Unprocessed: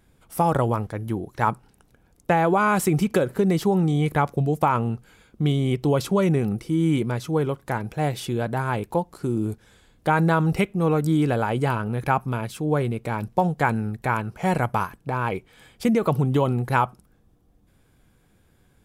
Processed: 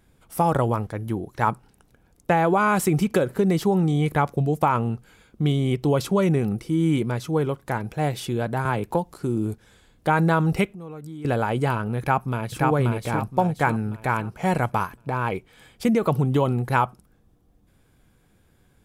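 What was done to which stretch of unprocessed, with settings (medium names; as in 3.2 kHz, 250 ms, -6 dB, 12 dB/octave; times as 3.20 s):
8.65–9.14 s: three bands compressed up and down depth 70%
10.69–11.25 s: compression 2.5:1, threshold -43 dBFS
11.99–12.66 s: echo throw 530 ms, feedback 40%, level -1.5 dB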